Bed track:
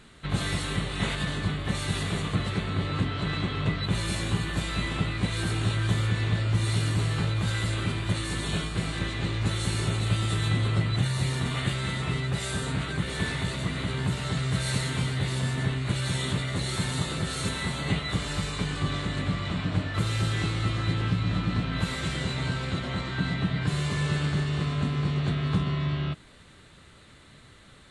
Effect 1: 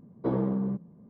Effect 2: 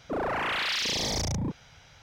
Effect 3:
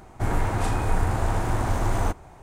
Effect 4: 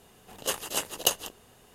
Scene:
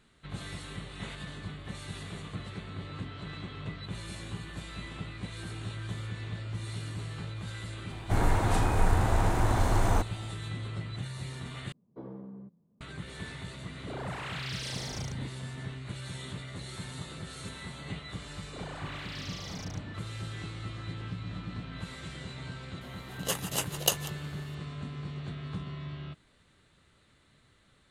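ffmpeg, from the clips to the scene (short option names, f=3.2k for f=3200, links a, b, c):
-filter_complex "[2:a]asplit=2[a][b];[0:a]volume=-12dB,asplit=2[c][d];[c]atrim=end=11.724[e];[1:a]atrim=end=1.09,asetpts=PTS-STARTPTS,volume=-16.5dB[f];[d]atrim=start=12.806[g];[3:a]atrim=end=2.42,asetpts=PTS-STARTPTS,volume=-1.5dB,afade=t=in:d=0.004:c=hsin,afade=t=out:st=2.416:d=0.004:c=hsin,adelay=7900[h];[a]atrim=end=2.02,asetpts=PTS-STARTPTS,volume=-11dB,afade=t=in:d=0.004:c=hsin,afade=t=out:st=2.016:d=0.004:c=hsin,adelay=13770[i];[b]atrim=end=2.02,asetpts=PTS-STARTPTS,volume=-15dB,afade=t=in:d=0.004:c=hsin,afade=t=out:st=2.016:d=0.004:c=hsin,adelay=18430[j];[4:a]atrim=end=1.74,asetpts=PTS-STARTPTS,volume=-2dB,afade=t=in:d=0.004:c=hsin,afade=t=out:st=1.736:d=0.004:c=hsin,adelay=22810[k];[e][f]acrossfade=d=0.004:c1=hsin:c2=hsin[l];[l][g]acrossfade=d=0.004:c1=hsin:c2=hsin[m];[m][h][i][j][k]amix=inputs=5:normalize=0"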